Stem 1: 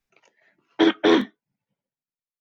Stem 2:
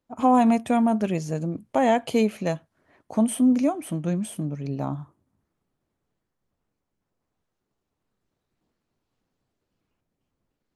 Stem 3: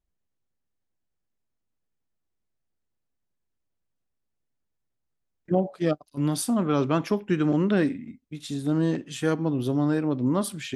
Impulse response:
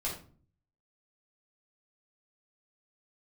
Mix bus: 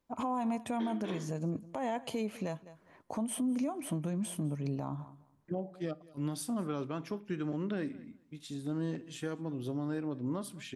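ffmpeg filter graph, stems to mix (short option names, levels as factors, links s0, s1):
-filter_complex "[0:a]volume=0.316,asplit=2[s0][s1];[s1]volume=0.168[s2];[1:a]highpass=61,acompressor=threshold=0.0794:ratio=6,equalizer=f=1000:t=o:w=0.27:g=6,volume=0.841,asplit=3[s3][s4][s5];[s4]volume=0.075[s6];[2:a]volume=0.316,asplit=3[s7][s8][s9];[s8]volume=0.0708[s10];[s9]volume=0.0708[s11];[s5]apad=whole_len=106009[s12];[s0][s12]sidechaincompress=threshold=0.0158:ratio=8:attack=16:release=144[s13];[3:a]atrim=start_sample=2205[s14];[s2][s10]amix=inputs=2:normalize=0[s15];[s15][s14]afir=irnorm=-1:irlink=0[s16];[s6][s11]amix=inputs=2:normalize=0,aecho=0:1:204|408|612:1|0.15|0.0225[s17];[s13][s3][s7][s16][s17]amix=inputs=5:normalize=0,alimiter=level_in=1.26:limit=0.0631:level=0:latency=1:release=314,volume=0.794"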